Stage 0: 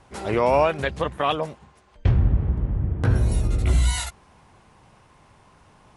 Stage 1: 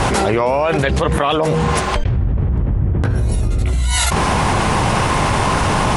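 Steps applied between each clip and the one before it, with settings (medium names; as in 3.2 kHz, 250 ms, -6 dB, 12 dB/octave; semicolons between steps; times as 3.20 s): de-hum 79.48 Hz, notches 6; level flattener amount 100%; trim -1 dB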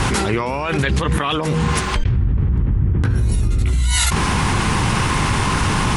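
peaking EQ 630 Hz -11.5 dB 0.94 oct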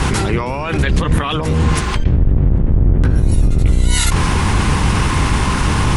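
octave divider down 1 oct, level +3 dB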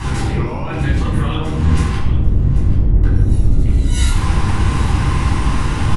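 delay 790 ms -15 dB; reverberation RT60 0.80 s, pre-delay 10 ms, DRR -6 dB; trim -14.5 dB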